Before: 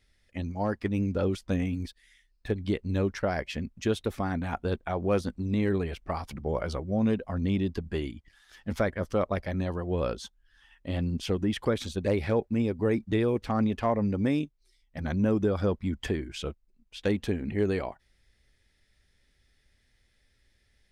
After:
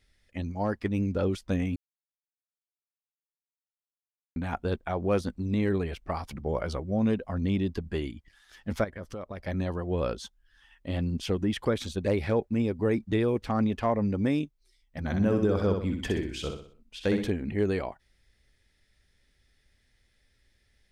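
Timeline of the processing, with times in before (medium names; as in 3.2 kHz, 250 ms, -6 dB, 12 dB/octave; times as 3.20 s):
1.76–4.36 s: mute
8.84–9.47 s: compression 4:1, threshold -36 dBFS
15.05–17.30 s: feedback delay 62 ms, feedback 42%, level -5.5 dB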